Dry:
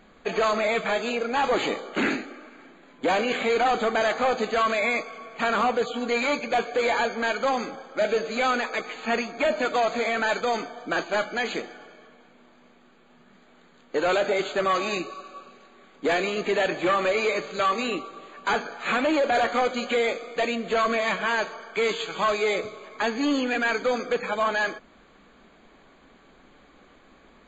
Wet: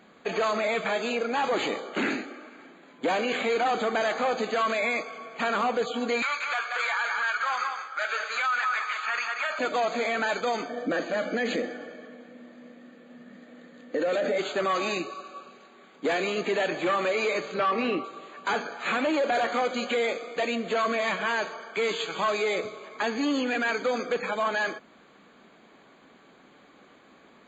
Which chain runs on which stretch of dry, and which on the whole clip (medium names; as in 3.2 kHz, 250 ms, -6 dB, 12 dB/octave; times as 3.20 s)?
6.22–9.59 s: resonant high-pass 1.3 kHz, resonance Q 3.4 + delay 183 ms -9 dB
10.69–14.38 s: peaking EQ 910 Hz -7 dB 0.3 oct + band-stop 390 Hz, Q 8.3 + small resonant body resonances 260/500/1800 Hz, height 13 dB, ringing for 30 ms
17.54–18.04 s: band-stop 3.6 kHz, Q 8.3 + waveshaping leveller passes 1 + distance through air 270 m
whole clip: peak limiter -19.5 dBFS; high-pass 130 Hz 12 dB/octave